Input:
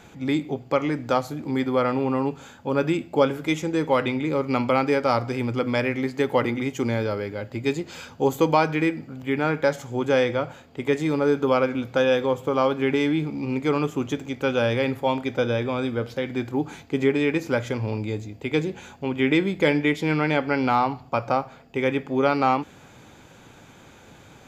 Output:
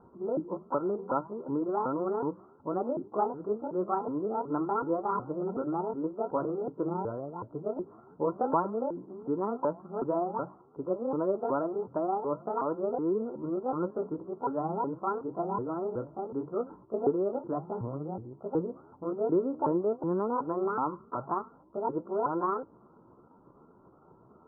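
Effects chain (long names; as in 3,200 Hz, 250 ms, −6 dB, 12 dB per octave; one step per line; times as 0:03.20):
pitch shifter swept by a sawtooth +10.5 semitones, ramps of 371 ms
Chebyshev low-pass with heavy ripple 1,400 Hz, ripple 6 dB
level −4 dB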